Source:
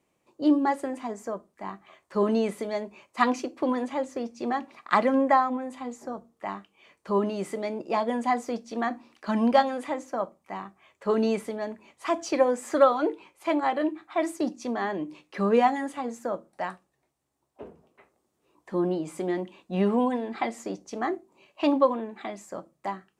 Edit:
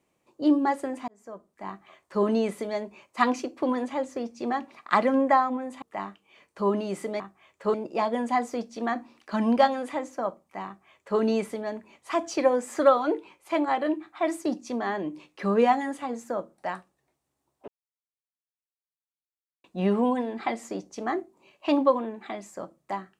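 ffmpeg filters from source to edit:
ffmpeg -i in.wav -filter_complex "[0:a]asplit=7[link_01][link_02][link_03][link_04][link_05][link_06][link_07];[link_01]atrim=end=1.08,asetpts=PTS-STARTPTS,afade=type=out:start_time=1.076:duration=0.004:curve=hsin[link_08];[link_02]atrim=start=1.08:end=5.822,asetpts=PTS-STARTPTS,afade=type=in:duration=0.63[link_09];[link_03]atrim=start=6.308:end=7.692[link_10];[link_04]atrim=start=10.608:end=11.152[link_11];[link_05]atrim=start=7.688:end=17.63,asetpts=PTS-STARTPTS,afade=type=out:start_time=9.938:duration=0.004:curve=hsin[link_12];[link_06]atrim=start=17.63:end=19.59,asetpts=PTS-STARTPTS,volume=0[link_13];[link_07]atrim=start=19.59,asetpts=PTS-STARTPTS,afade=type=in:duration=0.004:curve=hsin[link_14];[link_08][link_09]concat=n=2:v=0:a=1[link_15];[link_15][link_10]acrossfade=duration=0.004:curve1=hsin:curve2=hsin[link_16];[link_16][link_11]acrossfade=duration=0.004:curve1=hsin:curve2=hsin[link_17];[link_12][link_13][link_14]concat=n=3:v=0:a=1[link_18];[link_17][link_18]acrossfade=duration=0.004:curve1=hsin:curve2=hsin" out.wav

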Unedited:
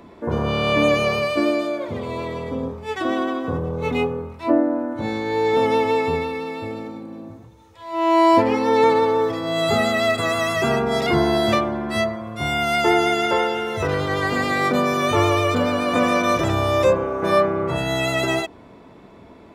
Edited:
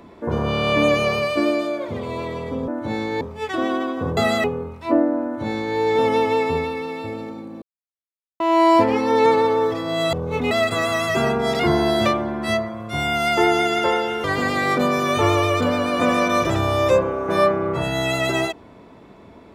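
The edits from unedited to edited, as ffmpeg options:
ffmpeg -i in.wav -filter_complex "[0:a]asplit=10[link_01][link_02][link_03][link_04][link_05][link_06][link_07][link_08][link_09][link_10];[link_01]atrim=end=2.682[link_11];[link_02]atrim=start=4.818:end=5.352[link_12];[link_03]atrim=start=2.678:end=3.642[link_13];[link_04]atrim=start=9.708:end=9.982[link_14];[link_05]atrim=start=4.018:end=7.2,asetpts=PTS-STARTPTS,afade=type=out:start_time=3.178:duration=0.004:curve=hsin[link_15];[link_06]atrim=start=7.2:end=7.98,asetpts=PTS-STARTPTS,volume=0[link_16];[link_07]atrim=start=7.98:end=9.712,asetpts=PTS-STARTPTS,afade=type=in:duration=0.004:curve=hsin[link_17];[link_08]atrim=start=3.638:end=4.022[link_18];[link_09]atrim=start=9.978:end=13.712[link_19];[link_10]atrim=start=14.178[link_20];[link_11][link_12]acrossfade=duration=0.004:curve1=hsin:curve2=hsin[link_21];[link_21][link_13]acrossfade=duration=0.004:curve1=hsin:curve2=hsin[link_22];[link_22][link_14]acrossfade=duration=0.004:curve1=hsin:curve2=hsin[link_23];[link_15][link_16][link_17]concat=n=3:v=0:a=1[link_24];[link_23][link_24]acrossfade=duration=0.004:curve1=hsin:curve2=hsin[link_25];[link_25][link_18]acrossfade=duration=0.004:curve1=hsin:curve2=hsin[link_26];[link_26][link_19]acrossfade=duration=0.004:curve1=hsin:curve2=hsin[link_27];[link_27][link_20]acrossfade=duration=0.004:curve1=hsin:curve2=hsin" out.wav

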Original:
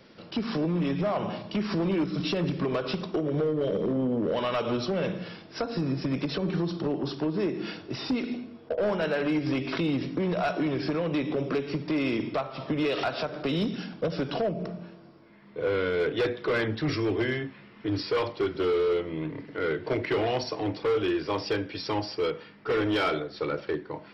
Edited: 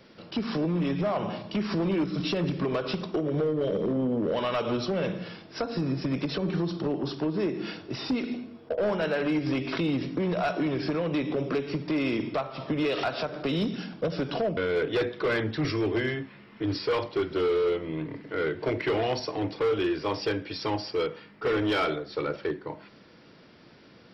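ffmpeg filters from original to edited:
ffmpeg -i in.wav -filter_complex "[0:a]asplit=2[link_01][link_02];[link_01]atrim=end=14.572[link_03];[link_02]atrim=start=15.808[link_04];[link_03][link_04]acrossfade=duration=0.004:curve1=hsin:curve2=hsin" out.wav

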